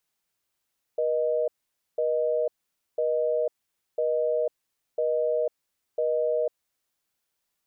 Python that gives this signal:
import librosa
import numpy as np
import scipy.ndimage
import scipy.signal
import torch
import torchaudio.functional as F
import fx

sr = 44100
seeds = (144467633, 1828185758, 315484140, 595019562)

y = fx.call_progress(sr, length_s=5.79, kind='busy tone', level_db=-25.0)